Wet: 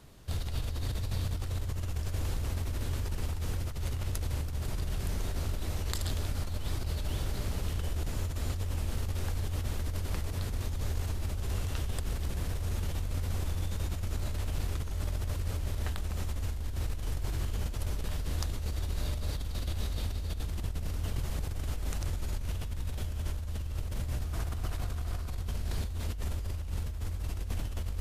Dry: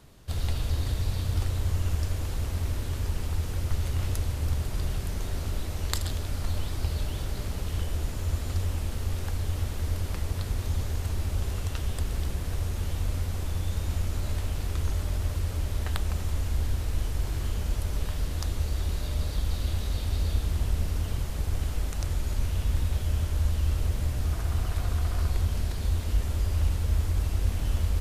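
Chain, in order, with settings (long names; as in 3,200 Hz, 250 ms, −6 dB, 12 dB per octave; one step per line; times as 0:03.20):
compressor whose output falls as the input rises −29 dBFS, ratio −1
level −3 dB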